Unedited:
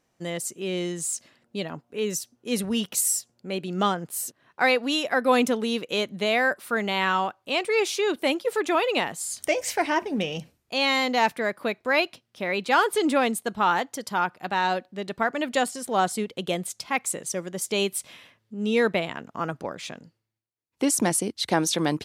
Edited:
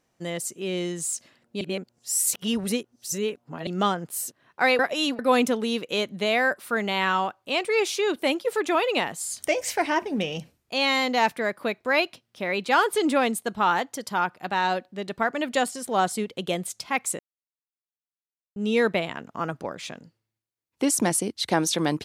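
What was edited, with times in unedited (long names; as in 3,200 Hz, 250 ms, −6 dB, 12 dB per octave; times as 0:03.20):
0:01.61–0:03.67: reverse
0:04.79–0:05.19: reverse
0:17.19–0:18.56: silence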